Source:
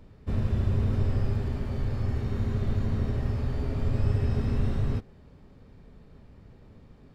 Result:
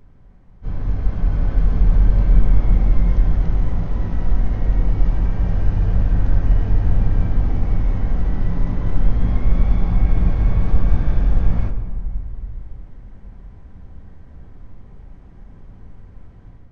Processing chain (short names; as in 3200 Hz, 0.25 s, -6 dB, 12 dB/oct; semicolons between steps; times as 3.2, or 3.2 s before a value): AGC gain up to 6.5 dB; on a send at -6 dB: reverb RT60 1.0 s, pre-delay 3 ms; on the sum: speed mistake 78 rpm record played at 33 rpm; gain +4 dB